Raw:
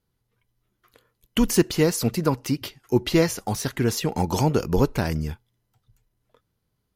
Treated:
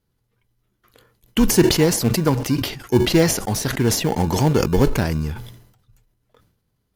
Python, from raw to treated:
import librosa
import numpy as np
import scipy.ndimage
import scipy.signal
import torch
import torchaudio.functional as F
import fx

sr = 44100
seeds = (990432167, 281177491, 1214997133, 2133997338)

p1 = fx.sample_hold(x, sr, seeds[0], rate_hz=1300.0, jitter_pct=0)
p2 = x + (p1 * librosa.db_to_amplitude(-10.0))
p3 = fx.sustainer(p2, sr, db_per_s=74.0)
y = p3 * librosa.db_to_amplitude(1.5)